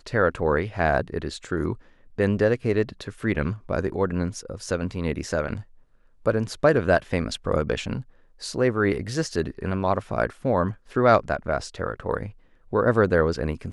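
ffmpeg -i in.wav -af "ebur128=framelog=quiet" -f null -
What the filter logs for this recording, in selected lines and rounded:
Integrated loudness:
  I:         -24.9 LUFS
  Threshold: -35.3 LUFS
Loudness range:
  LRA:         3.5 LU
  Threshold: -45.5 LUFS
  LRA low:   -27.4 LUFS
  LRA high:  -23.9 LUFS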